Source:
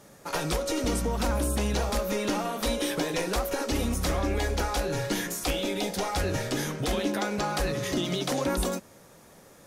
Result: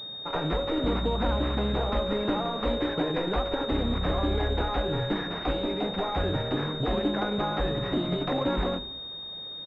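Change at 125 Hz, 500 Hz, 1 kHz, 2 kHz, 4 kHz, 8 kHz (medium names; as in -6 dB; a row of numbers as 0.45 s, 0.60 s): +1.0 dB, +1.0 dB, +1.0 dB, -2.5 dB, +2.5 dB, under -30 dB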